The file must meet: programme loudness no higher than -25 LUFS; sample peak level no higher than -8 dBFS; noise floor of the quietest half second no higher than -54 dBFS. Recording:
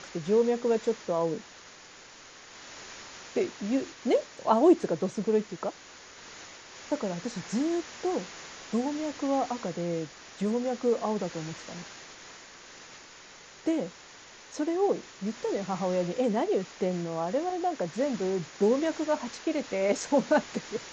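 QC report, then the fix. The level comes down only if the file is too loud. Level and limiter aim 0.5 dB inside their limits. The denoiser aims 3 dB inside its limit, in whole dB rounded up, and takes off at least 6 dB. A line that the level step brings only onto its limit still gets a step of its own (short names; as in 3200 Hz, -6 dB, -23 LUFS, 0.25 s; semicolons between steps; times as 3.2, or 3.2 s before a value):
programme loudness -29.5 LUFS: OK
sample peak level -10.0 dBFS: OK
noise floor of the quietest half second -50 dBFS: fail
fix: denoiser 7 dB, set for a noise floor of -50 dBFS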